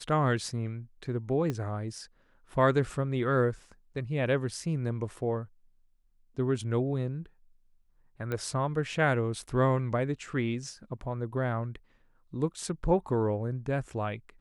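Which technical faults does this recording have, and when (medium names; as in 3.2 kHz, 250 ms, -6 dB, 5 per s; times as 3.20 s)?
1.50 s: pop -19 dBFS
8.32 s: pop -21 dBFS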